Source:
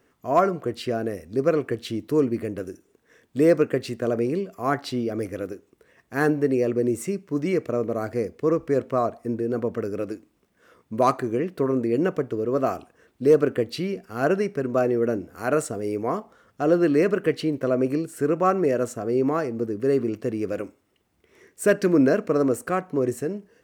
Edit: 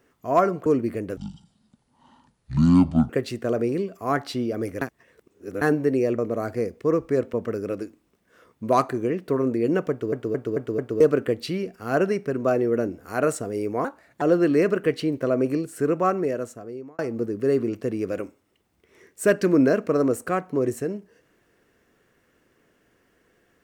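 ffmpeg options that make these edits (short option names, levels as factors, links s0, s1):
-filter_complex "[0:a]asplit=16[s0][s1][s2][s3][s4][s5][s6][s7][s8][s9][s10][s11][s12][s13][s14][s15];[s0]atrim=end=0.662[s16];[s1]atrim=start=2.138:end=2.654[s17];[s2]atrim=start=2.65:end=3.67,asetpts=PTS-STARTPTS,asetrate=23373,aresample=44100[s18];[s3]atrim=start=3.666:end=5.392[s19];[s4]atrim=start=5.388:end=6.192,asetpts=PTS-STARTPTS,areverse[s20];[s5]atrim=start=6.188:end=6.762[s21];[s6]atrim=start=7.768:end=8.922[s22];[s7]atrim=start=9.628:end=12.422[s23];[s8]atrim=start=12.198:end=12.422[s24];[s9]atrim=start=12.198:end=12.422[s25];[s10]atrim=start=12.198:end=12.422[s26];[s11]atrim=start=12.198:end=12.422[s27];[s12]atrim=start=13.298:end=16.144[s28];[s13]atrim=start=16.14:end=16.62,asetpts=PTS-STARTPTS,asetrate=56889,aresample=44100,atrim=end_sample=16409,asetpts=PTS-STARTPTS[s29];[s14]atrim=start=16.616:end=19.39,asetpts=PTS-STARTPTS,afade=t=out:st=1.704:d=1.07[s30];[s15]atrim=start=19.39,asetpts=PTS-STARTPTS,afade=t=in:d=0.004:c=hsin[s31];[s16][s17]acrossfade=d=0.004:c1=hsin:c2=hsin[s32];[s32][s18]acrossfade=d=0.004:c1=hsin:c2=hsin[s33];[s33][s19]acrossfade=d=0.004:c1=hsin:c2=hsin[s34];[s34][s20]acrossfade=d=0.004:c1=hsin:c2=hsin[s35];[s35][s21]acrossfade=d=0.004:c1=hsin:c2=hsin[s36];[s36][s22]acrossfade=d=0.004:c1=hsin:c2=hsin[s37];[s37][s23]acrossfade=d=0.004:c1=hsin:c2=hsin[s38];[s38][s24]acrossfade=d=0.004:c1=hsin:c2=hsin[s39];[s39][s25]acrossfade=d=0.004:c1=hsin:c2=hsin[s40];[s40][s26]acrossfade=d=0.004:c1=hsin:c2=hsin[s41];[s41][s27]acrossfade=d=0.004:c1=hsin:c2=hsin[s42];[s42][s28]acrossfade=d=0.004:c1=hsin:c2=hsin[s43];[s43][s29]acrossfade=d=0.004:c1=hsin:c2=hsin[s44];[s30][s31]concat=n=2:v=0:a=1[s45];[s44][s45]acrossfade=d=0.004:c1=hsin:c2=hsin"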